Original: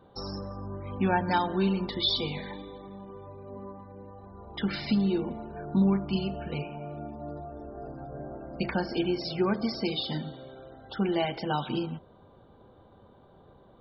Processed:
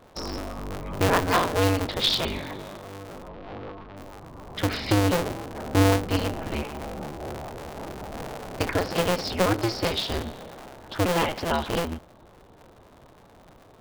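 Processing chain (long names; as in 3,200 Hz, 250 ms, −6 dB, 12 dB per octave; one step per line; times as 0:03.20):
sub-harmonics by changed cycles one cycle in 2, inverted
0:03.28–0:03.97: low-pass filter 3,800 Hz 24 dB per octave
level +4 dB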